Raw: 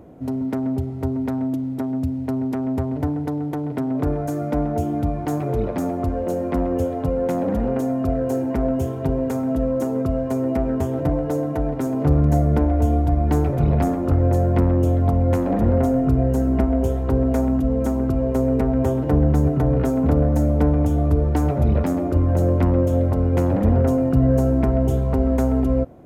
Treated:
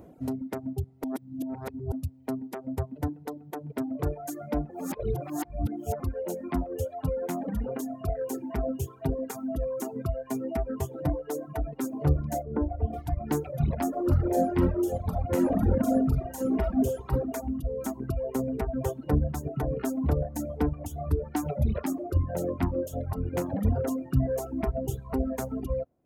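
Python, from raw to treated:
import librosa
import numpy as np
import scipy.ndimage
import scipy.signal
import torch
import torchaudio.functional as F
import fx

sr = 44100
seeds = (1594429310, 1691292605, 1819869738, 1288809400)

y = fx.lowpass(x, sr, hz=fx.line((12.42, 1100.0), (12.92, 1600.0)), slope=12, at=(12.42, 12.92), fade=0.02)
y = fx.reverb_throw(y, sr, start_s=13.88, length_s=3.24, rt60_s=1.4, drr_db=-1.5)
y = fx.edit(y, sr, fx.reverse_span(start_s=1.04, length_s=0.88),
    fx.reverse_span(start_s=4.7, length_s=1.3), tone=tone)
y = fx.dereverb_blind(y, sr, rt60_s=1.6)
y = fx.high_shelf(y, sr, hz=5500.0, db=8.5)
y = fx.dereverb_blind(y, sr, rt60_s=1.9)
y = y * 10.0 ** (-4.5 / 20.0)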